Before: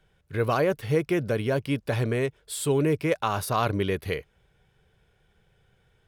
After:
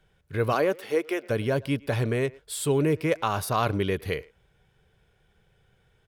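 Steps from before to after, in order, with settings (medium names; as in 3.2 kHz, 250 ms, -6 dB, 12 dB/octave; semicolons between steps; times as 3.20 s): 0.52–1.29 s: high-pass 170 Hz -> 460 Hz 24 dB/octave; speakerphone echo 110 ms, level -22 dB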